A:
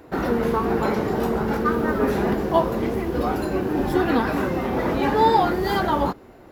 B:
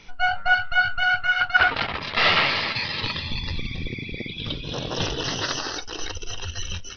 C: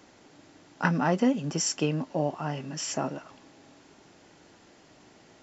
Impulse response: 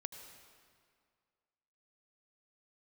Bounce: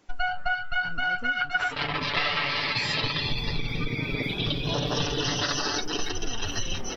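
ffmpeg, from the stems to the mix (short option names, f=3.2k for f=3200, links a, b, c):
-filter_complex "[0:a]acompressor=threshold=-30dB:ratio=2.5,adelay=2150,volume=-7.5dB[a];[1:a]agate=range=-33dB:threshold=-32dB:ratio=3:detection=peak,aecho=1:1:6.9:0.87,volume=2.5dB[b];[2:a]volume=-7.5dB,asplit=2[c][d];[d]apad=whole_len=382104[e];[a][e]sidechaincompress=threshold=-41dB:ratio=8:attack=16:release=326[f];[f][b][c]amix=inputs=3:normalize=0,acompressor=threshold=-23dB:ratio=12"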